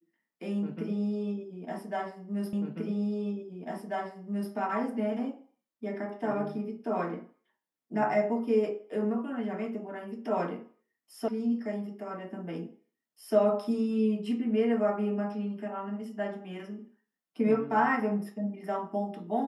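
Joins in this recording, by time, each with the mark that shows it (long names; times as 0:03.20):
0:02.53: the same again, the last 1.99 s
0:11.28: cut off before it has died away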